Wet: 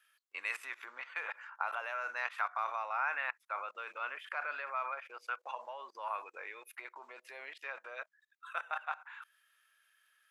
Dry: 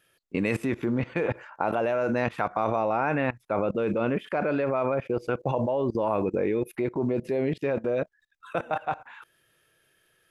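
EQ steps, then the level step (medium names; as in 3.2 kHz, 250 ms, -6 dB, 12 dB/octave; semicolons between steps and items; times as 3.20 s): ladder high-pass 1 kHz, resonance 35%; +1.5 dB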